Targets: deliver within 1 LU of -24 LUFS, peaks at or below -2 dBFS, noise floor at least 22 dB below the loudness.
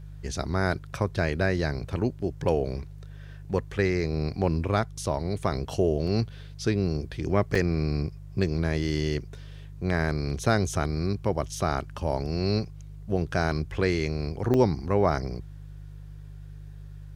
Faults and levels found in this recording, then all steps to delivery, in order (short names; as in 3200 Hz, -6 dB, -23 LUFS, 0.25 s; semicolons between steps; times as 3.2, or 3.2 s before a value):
dropouts 3; longest dropout 3.8 ms; hum 50 Hz; harmonics up to 150 Hz; hum level -41 dBFS; loudness -28.0 LUFS; peak -8.5 dBFS; loudness target -24.0 LUFS
-> interpolate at 6.07/7.55/14.54, 3.8 ms; de-hum 50 Hz, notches 3; gain +4 dB